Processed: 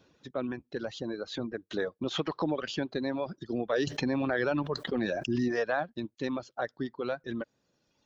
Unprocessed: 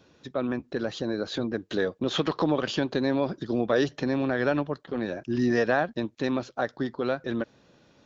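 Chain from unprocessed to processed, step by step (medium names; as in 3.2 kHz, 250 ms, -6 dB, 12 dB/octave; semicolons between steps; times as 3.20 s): reverb removal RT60 1.6 s; 3.87–5.48 s: level flattener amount 70%; trim -4.5 dB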